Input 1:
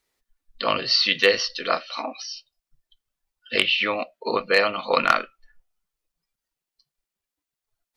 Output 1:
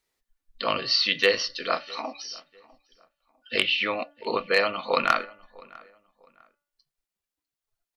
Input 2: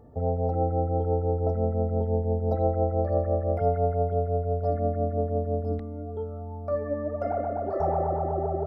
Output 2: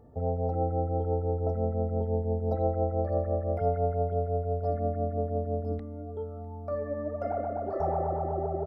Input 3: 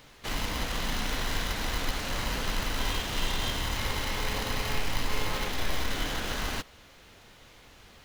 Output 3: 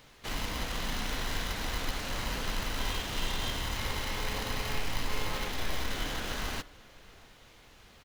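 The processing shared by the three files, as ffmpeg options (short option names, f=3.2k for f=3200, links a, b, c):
-filter_complex "[0:a]bandreject=f=289.4:t=h:w=4,bandreject=f=578.8:t=h:w=4,bandreject=f=868.2:t=h:w=4,bandreject=f=1.1576k:t=h:w=4,bandreject=f=1.447k:t=h:w=4,bandreject=f=1.7364k:t=h:w=4,bandreject=f=2.0258k:t=h:w=4,asplit=2[a][b];[b]adelay=651,lowpass=f=2.5k:p=1,volume=-23dB,asplit=2[c][d];[d]adelay=651,lowpass=f=2.5k:p=1,volume=0.32[e];[c][e]amix=inputs=2:normalize=0[f];[a][f]amix=inputs=2:normalize=0,volume=-3dB"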